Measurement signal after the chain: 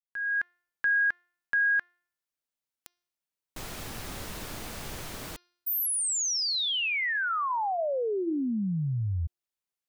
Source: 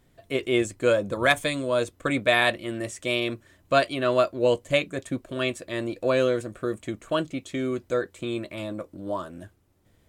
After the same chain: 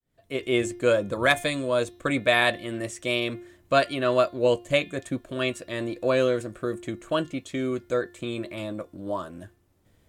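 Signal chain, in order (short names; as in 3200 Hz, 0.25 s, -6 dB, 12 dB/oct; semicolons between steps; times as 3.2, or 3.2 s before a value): opening faded in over 0.51 s; de-hum 352.1 Hz, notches 17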